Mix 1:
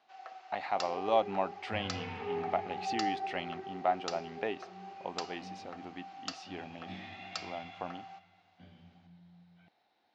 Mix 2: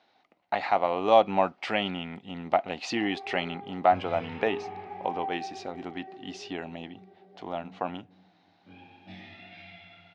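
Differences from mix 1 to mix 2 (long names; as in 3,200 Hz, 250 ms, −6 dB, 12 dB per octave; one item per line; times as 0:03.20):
speech +8.5 dB
first sound: muted
second sound: entry +2.20 s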